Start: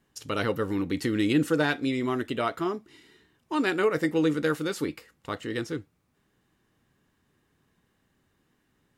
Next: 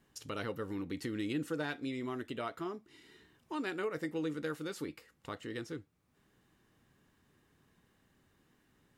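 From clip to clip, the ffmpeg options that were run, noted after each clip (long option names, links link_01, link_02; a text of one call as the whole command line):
ffmpeg -i in.wav -af "acompressor=threshold=-56dB:ratio=1.5" out.wav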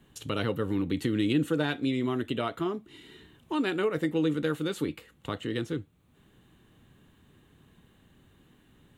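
ffmpeg -i in.wav -filter_complex "[0:a]lowshelf=frequency=350:gain=7,acrossover=split=130|3800[link_01][link_02][link_03];[link_02]aexciter=amount=2.8:drive=4.1:freq=2900[link_04];[link_01][link_04][link_03]amix=inputs=3:normalize=0,volume=6dB" out.wav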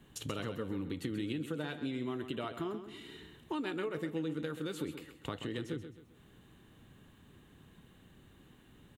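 ffmpeg -i in.wav -filter_complex "[0:a]acompressor=threshold=-36dB:ratio=4,asplit=2[link_01][link_02];[link_02]aecho=0:1:132|264|396|528:0.299|0.11|0.0409|0.0151[link_03];[link_01][link_03]amix=inputs=2:normalize=0" out.wav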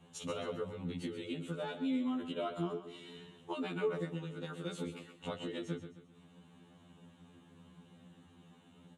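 ffmpeg -i in.wav -af "highpass=120,equalizer=frequency=200:width_type=q:width=4:gain=9,equalizer=frequency=340:width_type=q:width=4:gain=-4,equalizer=frequency=530:width_type=q:width=4:gain=4,equalizer=frequency=840:width_type=q:width=4:gain=4,equalizer=frequency=1800:width_type=q:width=4:gain=-6,equalizer=frequency=4800:width_type=q:width=4:gain=-5,lowpass=frequency=9300:width=0.5412,lowpass=frequency=9300:width=1.3066,afftfilt=real='re*2*eq(mod(b,4),0)':imag='im*2*eq(mod(b,4),0)':win_size=2048:overlap=0.75,volume=2dB" out.wav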